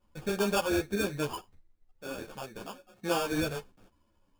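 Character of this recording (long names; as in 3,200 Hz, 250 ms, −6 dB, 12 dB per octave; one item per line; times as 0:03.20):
aliases and images of a low sample rate 2,000 Hz, jitter 0%
a shimmering, thickened sound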